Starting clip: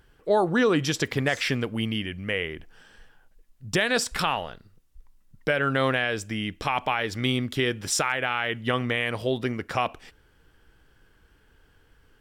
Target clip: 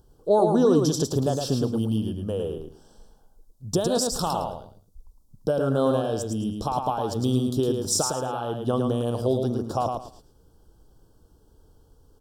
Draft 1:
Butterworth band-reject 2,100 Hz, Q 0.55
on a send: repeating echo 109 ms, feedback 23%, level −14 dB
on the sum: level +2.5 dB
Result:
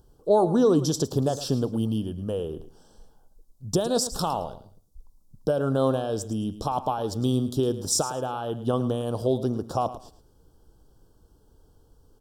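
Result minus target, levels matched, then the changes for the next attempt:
echo-to-direct −9.5 dB
change: repeating echo 109 ms, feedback 23%, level −4.5 dB

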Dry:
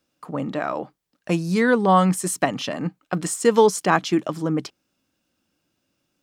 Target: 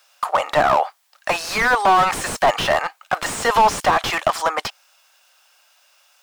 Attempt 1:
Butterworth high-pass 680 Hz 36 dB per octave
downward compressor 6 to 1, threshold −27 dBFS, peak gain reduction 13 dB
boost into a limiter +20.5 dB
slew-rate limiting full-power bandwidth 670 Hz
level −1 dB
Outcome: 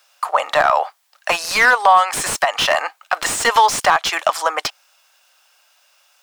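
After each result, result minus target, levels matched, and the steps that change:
downward compressor: peak gain reduction +13 dB; slew-rate limiting: distortion −7 dB
remove: downward compressor 6 to 1, threshold −27 dBFS, peak gain reduction 13 dB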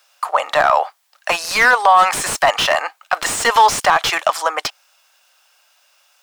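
slew-rate limiting: distortion −6 dB
change: slew-rate limiting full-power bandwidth 287 Hz

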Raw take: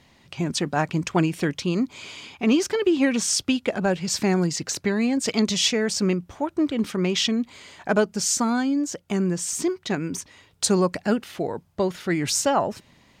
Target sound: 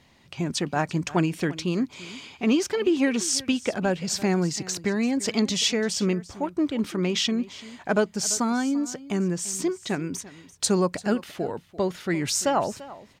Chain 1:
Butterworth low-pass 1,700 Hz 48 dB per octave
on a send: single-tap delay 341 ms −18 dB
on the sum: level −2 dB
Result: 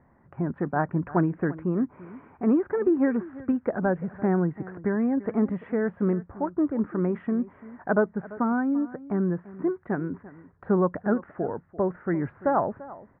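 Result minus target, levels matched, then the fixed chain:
2,000 Hz band −3.0 dB
on a send: single-tap delay 341 ms −18 dB
on the sum: level −2 dB

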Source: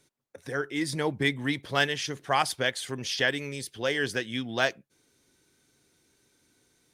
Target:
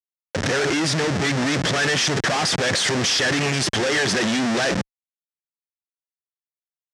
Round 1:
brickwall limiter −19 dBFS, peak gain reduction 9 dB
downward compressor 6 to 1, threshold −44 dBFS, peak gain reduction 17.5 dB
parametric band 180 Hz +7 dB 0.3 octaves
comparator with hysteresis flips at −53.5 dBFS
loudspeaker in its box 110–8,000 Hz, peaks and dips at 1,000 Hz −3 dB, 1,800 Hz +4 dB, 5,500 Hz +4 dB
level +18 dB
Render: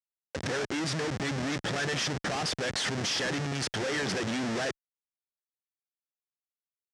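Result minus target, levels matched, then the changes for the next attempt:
downward compressor: peak gain reduction +10 dB
change: downward compressor 6 to 1, threshold −32 dBFS, peak gain reduction 7.5 dB

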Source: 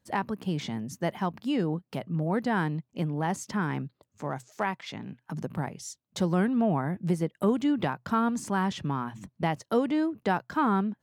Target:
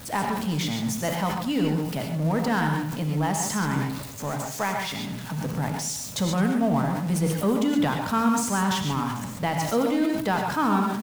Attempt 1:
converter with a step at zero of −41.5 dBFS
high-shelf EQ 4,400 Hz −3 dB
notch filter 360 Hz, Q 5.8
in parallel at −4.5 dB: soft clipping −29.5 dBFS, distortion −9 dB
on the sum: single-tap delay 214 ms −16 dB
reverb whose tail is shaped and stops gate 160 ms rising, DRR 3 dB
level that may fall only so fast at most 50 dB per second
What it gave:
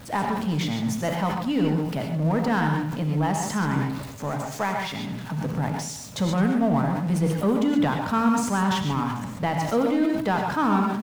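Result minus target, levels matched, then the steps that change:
8,000 Hz band −6.0 dB; soft clipping: distortion −5 dB
change: high-shelf EQ 4,400 Hz +7.5 dB
change: soft clipping −39.5 dBFS, distortion −3 dB

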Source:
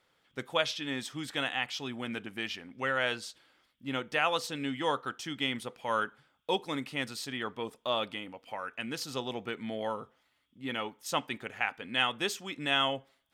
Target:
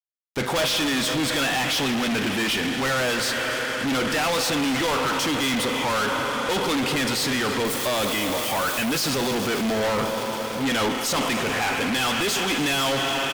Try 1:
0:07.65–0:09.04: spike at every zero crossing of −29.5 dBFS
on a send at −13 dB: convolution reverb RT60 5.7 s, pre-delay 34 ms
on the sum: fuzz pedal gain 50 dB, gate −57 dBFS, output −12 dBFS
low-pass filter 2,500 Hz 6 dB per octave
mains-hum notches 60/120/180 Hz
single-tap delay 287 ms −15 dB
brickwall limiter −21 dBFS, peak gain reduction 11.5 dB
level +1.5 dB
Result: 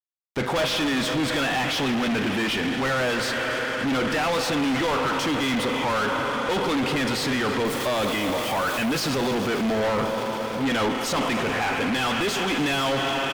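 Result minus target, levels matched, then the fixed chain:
8,000 Hz band −5.0 dB
0:07.65–0:09.04: spike at every zero crossing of −29.5 dBFS
on a send at −13 dB: convolution reverb RT60 5.7 s, pre-delay 34 ms
on the sum: fuzz pedal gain 50 dB, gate −57 dBFS, output −12 dBFS
low-pass filter 9,800 Hz 6 dB per octave
mains-hum notches 60/120/180 Hz
single-tap delay 287 ms −15 dB
brickwall limiter −21 dBFS, peak gain reduction 12 dB
level +1.5 dB

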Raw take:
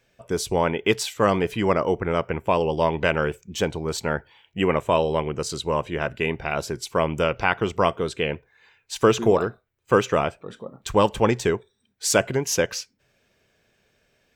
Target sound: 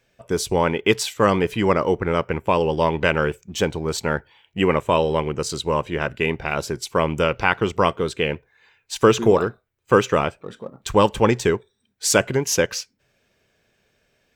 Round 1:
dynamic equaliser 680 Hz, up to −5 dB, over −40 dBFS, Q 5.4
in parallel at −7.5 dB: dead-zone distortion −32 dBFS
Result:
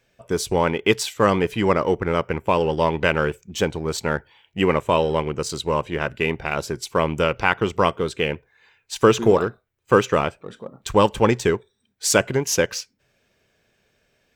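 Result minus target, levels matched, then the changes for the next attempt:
dead-zone distortion: distortion +9 dB
change: dead-zone distortion −42.5 dBFS

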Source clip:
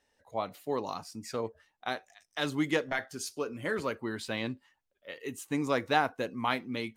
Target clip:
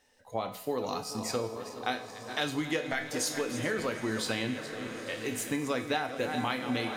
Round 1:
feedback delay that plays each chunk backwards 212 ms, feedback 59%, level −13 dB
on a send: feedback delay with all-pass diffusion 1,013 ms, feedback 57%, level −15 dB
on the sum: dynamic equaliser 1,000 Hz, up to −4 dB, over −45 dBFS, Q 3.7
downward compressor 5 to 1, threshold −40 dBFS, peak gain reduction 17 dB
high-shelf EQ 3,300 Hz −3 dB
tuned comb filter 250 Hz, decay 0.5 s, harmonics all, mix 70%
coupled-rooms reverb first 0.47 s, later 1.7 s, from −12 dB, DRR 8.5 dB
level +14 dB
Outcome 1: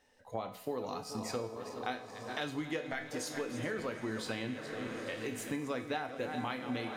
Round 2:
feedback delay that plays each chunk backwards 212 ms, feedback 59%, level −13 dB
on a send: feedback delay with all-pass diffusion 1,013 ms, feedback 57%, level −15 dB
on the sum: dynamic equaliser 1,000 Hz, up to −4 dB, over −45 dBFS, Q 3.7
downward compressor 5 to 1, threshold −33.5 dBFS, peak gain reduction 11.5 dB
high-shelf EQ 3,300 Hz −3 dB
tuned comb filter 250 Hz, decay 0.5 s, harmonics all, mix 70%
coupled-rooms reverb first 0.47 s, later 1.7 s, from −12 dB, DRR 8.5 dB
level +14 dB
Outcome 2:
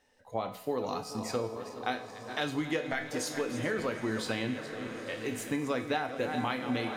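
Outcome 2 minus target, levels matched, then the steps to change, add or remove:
8,000 Hz band −4.5 dB
change: high-shelf EQ 3,300 Hz +3.5 dB

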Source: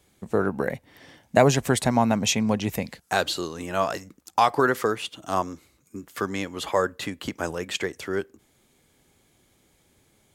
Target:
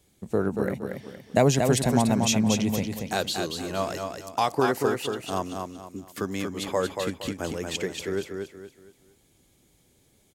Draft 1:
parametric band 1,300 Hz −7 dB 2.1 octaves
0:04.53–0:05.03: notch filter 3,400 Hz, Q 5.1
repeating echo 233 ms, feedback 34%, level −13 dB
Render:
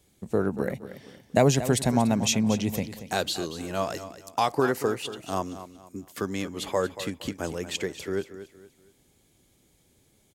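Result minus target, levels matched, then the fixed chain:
echo-to-direct −8 dB
parametric band 1,300 Hz −7 dB 2.1 octaves
0:04.53–0:05.03: notch filter 3,400 Hz, Q 5.1
repeating echo 233 ms, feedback 34%, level −5 dB

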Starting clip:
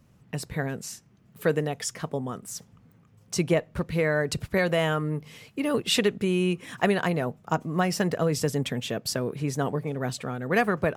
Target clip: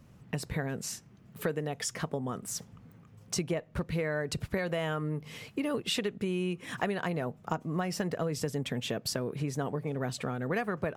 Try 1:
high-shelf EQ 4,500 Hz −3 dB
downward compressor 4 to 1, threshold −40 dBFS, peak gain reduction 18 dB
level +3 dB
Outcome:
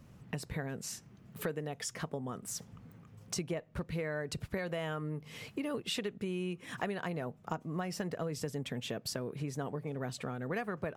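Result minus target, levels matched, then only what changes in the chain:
downward compressor: peak gain reduction +5 dB
change: downward compressor 4 to 1, threshold −33.5 dBFS, peak gain reduction 13.5 dB

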